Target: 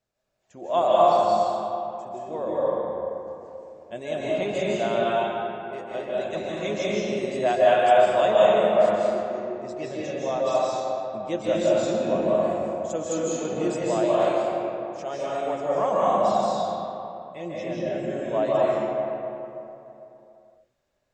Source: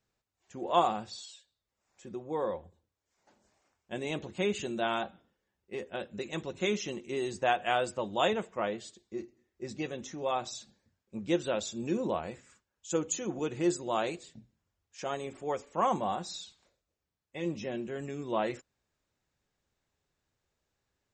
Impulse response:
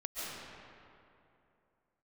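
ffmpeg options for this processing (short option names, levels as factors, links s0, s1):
-filter_complex "[0:a]equalizer=f=630:w=4.7:g=13.5[s0];[1:a]atrim=start_sample=2205,asetrate=39249,aresample=44100[s1];[s0][s1]afir=irnorm=-1:irlink=0,volume=1.19"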